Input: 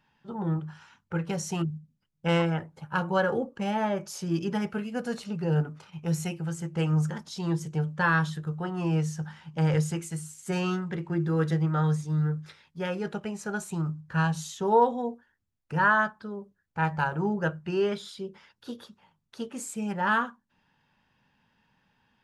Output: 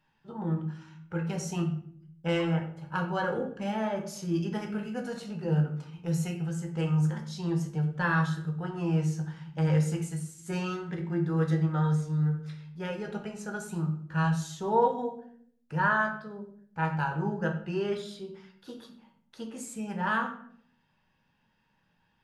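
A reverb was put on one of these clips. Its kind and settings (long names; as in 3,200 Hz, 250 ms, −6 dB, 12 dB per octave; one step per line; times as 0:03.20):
rectangular room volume 95 cubic metres, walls mixed, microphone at 0.58 metres
level −5 dB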